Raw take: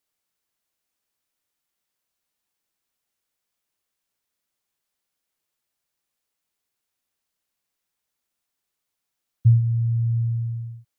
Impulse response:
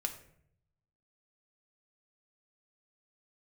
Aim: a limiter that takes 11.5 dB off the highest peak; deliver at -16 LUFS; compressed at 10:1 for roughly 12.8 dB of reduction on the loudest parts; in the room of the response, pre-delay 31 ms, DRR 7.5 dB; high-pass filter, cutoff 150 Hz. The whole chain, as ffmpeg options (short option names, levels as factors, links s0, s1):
-filter_complex "[0:a]highpass=150,acompressor=threshold=0.0316:ratio=10,alimiter=level_in=3.55:limit=0.0631:level=0:latency=1,volume=0.282,asplit=2[s0][s1];[1:a]atrim=start_sample=2205,adelay=31[s2];[s1][s2]afir=irnorm=-1:irlink=0,volume=0.376[s3];[s0][s3]amix=inputs=2:normalize=0,volume=28.2"